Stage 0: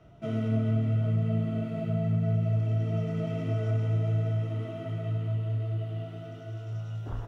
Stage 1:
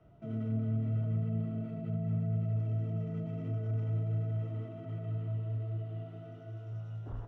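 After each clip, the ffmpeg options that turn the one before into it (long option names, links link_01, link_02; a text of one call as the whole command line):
ffmpeg -i in.wav -filter_complex "[0:a]highshelf=frequency=2500:gain=-11.5,acrossover=split=350[link_01][link_02];[link_02]alimiter=level_in=15dB:limit=-24dB:level=0:latency=1:release=18,volume=-15dB[link_03];[link_01][link_03]amix=inputs=2:normalize=0,volume=-5.5dB" out.wav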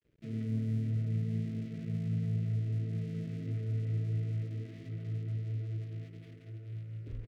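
ffmpeg -i in.wav -af "adynamicsmooth=sensitivity=5.5:basefreq=690,aeval=exprs='sgn(val(0))*max(abs(val(0))-0.00119,0)':channel_layout=same,firequalizer=gain_entry='entry(500,0);entry(750,-20);entry(2000,10)':delay=0.05:min_phase=1" out.wav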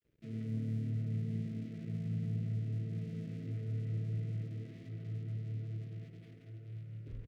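ffmpeg -i in.wav -filter_complex "[0:a]asplit=6[link_01][link_02][link_03][link_04][link_05][link_06];[link_02]adelay=101,afreqshift=37,volume=-14.5dB[link_07];[link_03]adelay=202,afreqshift=74,volume=-20.2dB[link_08];[link_04]adelay=303,afreqshift=111,volume=-25.9dB[link_09];[link_05]adelay=404,afreqshift=148,volume=-31.5dB[link_10];[link_06]adelay=505,afreqshift=185,volume=-37.2dB[link_11];[link_01][link_07][link_08][link_09][link_10][link_11]amix=inputs=6:normalize=0,volume=-4dB" out.wav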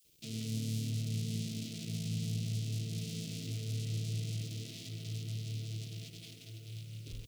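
ffmpeg -i in.wav -af "aexciter=amount=9.3:drive=8.4:freq=2800" out.wav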